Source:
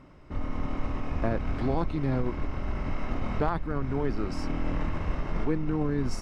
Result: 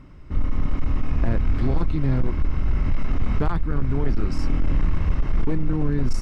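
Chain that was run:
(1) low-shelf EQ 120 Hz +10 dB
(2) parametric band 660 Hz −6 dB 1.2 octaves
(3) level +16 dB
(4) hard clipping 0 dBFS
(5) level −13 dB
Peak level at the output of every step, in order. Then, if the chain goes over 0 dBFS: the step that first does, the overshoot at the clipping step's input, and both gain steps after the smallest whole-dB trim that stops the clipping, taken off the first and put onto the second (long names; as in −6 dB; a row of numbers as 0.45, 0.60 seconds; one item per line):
−8.0, −8.5, +7.5, 0.0, −13.0 dBFS
step 3, 7.5 dB
step 3 +8 dB, step 5 −5 dB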